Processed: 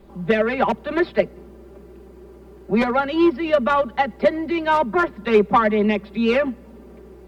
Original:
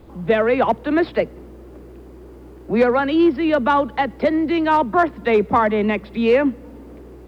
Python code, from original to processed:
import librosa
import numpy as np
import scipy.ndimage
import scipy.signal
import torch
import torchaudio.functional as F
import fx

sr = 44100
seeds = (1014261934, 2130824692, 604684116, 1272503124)

y = fx.cheby_harmonics(x, sr, harmonics=(3,), levels_db=(-17,), full_scale_db=-4.5)
y = y + 0.86 * np.pad(y, (int(5.1 * sr / 1000.0), 0))[:len(y)]